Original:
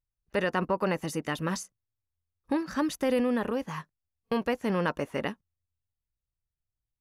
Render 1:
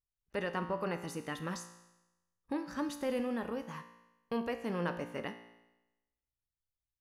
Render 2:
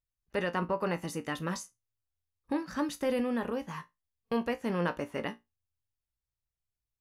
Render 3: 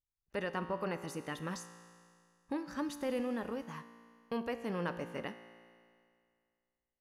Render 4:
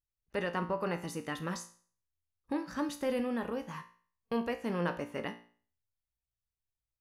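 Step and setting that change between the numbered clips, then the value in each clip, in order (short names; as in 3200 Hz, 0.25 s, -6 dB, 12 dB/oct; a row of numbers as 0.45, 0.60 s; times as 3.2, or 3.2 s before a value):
resonator, decay: 1, 0.19, 2.2, 0.45 s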